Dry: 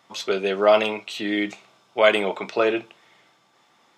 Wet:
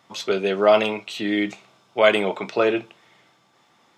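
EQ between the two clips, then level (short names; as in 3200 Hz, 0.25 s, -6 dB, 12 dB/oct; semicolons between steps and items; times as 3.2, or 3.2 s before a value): low shelf 200 Hz +7 dB; 0.0 dB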